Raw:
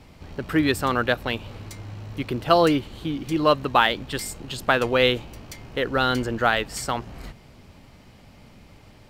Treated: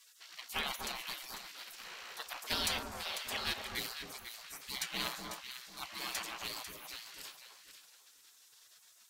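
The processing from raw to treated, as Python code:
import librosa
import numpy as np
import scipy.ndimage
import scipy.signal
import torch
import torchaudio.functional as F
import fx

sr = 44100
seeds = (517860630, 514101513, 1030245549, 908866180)

p1 = fx.spec_gate(x, sr, threshold_db=-30, keep='weak')
p2 = 10.0 ** (-34.5 / 20.0) * np.tanh(p1 / 10.0 ** (-34.5 / 20.0))
p3 = p1 + F.gain(torch.from_numpy(p2), -4.0).numpy()
p4 = fx.echo_alternate(p3, sr, ms=248, hz=1400.0, feedback_pct=52, wet_db=-3.5)
y = F.gain(torch.from_numpy(p4), 1.0).numpy()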